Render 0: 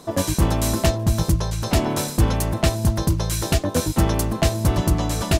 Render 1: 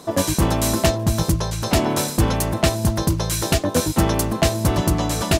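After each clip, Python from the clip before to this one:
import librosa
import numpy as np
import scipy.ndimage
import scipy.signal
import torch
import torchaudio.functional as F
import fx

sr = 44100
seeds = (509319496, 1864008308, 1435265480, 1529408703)

y = fx.low_shelf(x, sr, hz=92.0, db=-8.0)
y = y * librosa.db_to_amplitude(3.0)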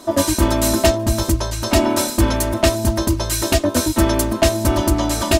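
y = x + 0.88 * np.pad(x, (int(3.2 * sr / 1000.0), 0))[:len(x)]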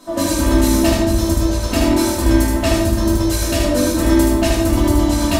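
y = x + 10.0 ** (-3.5 / 20.0) * np.pad(x, (int(76 * sr / 1000.0), 0))[:len(x)]
y = fx.room_shoebox(y, sr, seeds[0], volume_m3=230.0, walls='mixed', distance_m=2.0)
y = y * librosa.db_to_amplitude(-8.0)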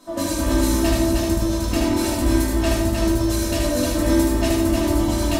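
y = x + 10.0 ** (-4.5 / 20.0) * np.pad(x, (int(308 * sr / 1000.0), 0))[:len(x)]
y = y * librosa.db_to_amplitude(-5.5)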